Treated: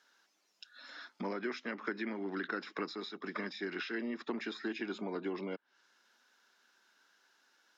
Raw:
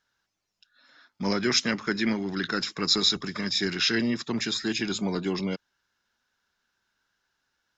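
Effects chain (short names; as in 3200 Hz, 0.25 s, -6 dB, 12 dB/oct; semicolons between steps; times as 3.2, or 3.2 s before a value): compressor 20:1, threshold -38 dBFS, peak gain reduction 21 dB; treble ducked by the level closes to 2100 Hz, closed at -42.5 dBFS; HPF 250 Hz 24 dB/oct; gain +7 dB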